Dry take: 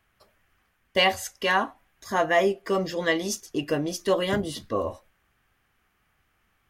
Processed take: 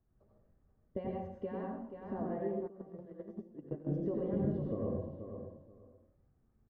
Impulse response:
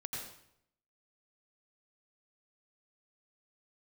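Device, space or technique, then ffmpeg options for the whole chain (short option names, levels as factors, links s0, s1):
television next door: -filter_complex "[0:a]aecho=1:1:480|960:0.224|0.0448,acompressor=threshold=0.0398:ratio=4,lowpass=390[s0];[1:a]atrim=start_sample=2205[s1];[s0][s1]afir=irnorm=-1:irlink=0,asplit=3[s2][s3][s4];[s2]afade=t=out:st=2.66:d=0.02[s5];[s3]agate=range=0.141:threshold=0.0224:ratio=16:detection=peak,afade=t=in:st=2.66:d=0.02,afade=t=out:st=3.92:d=0.02[s6];[s4]afade=t=in:st=3.92:d=0.02[s7];[s5][s6][s7]amix=inputs=3:normalize=0,volume=1.12"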